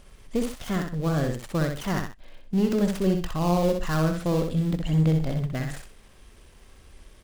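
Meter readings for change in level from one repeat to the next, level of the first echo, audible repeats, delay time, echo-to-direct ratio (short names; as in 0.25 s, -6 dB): -10.5 dB, -5.0 dB, 2, 63 ms, -4.5 dB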